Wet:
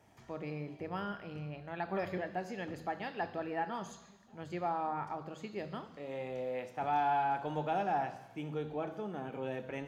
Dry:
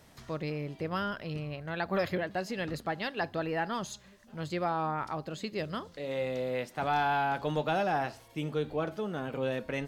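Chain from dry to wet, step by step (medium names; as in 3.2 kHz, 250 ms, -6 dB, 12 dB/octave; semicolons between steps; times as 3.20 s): treble shelf 5.2 kHz -4.5 dB; reverberation RT60 1.1 s, pre-delay 3 ms, DRR 10 dB; trim -2 dB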